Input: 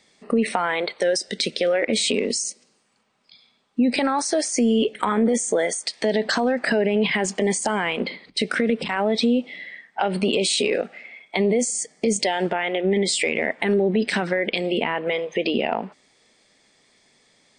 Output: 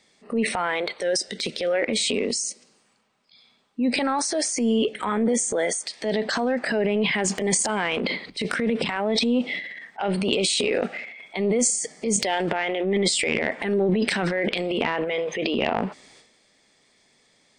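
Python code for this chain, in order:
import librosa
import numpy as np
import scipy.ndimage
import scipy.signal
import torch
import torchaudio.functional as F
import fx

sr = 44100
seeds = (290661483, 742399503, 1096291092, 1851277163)

y = fx.transient(x, sr, attack_db=-6, sustain_db=fx.steps((0.0, 5.0), (7.17, 11.0)))
y = F.gain(torch.from_numpy(y), -2.0).numpy()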